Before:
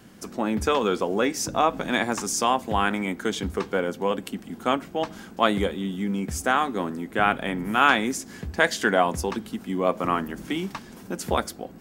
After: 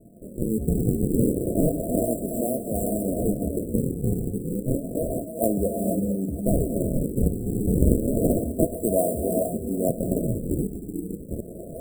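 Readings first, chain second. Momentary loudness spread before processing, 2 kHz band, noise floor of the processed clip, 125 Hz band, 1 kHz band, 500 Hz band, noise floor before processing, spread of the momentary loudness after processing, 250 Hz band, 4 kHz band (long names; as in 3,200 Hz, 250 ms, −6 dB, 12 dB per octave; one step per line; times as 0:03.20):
10 LU, below −40 dB, −38 dBFS, +9.0 dB, −14.5 dB, +1.0 dB, −45 dBFS, 7 LU, +3.5 dB, below −40 dB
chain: fade-out on the ending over 1.15 s
high-shelf EQ 11,000 Hz −11.5 dB
reverb whose tail is shaped and stops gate 500 ms rising, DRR 1.5 dB
sample-and-hold swept by an LFO 40×, swing 160% 0.3 Hz
linear-phase brick-wall band-stop 710–7,500 Hz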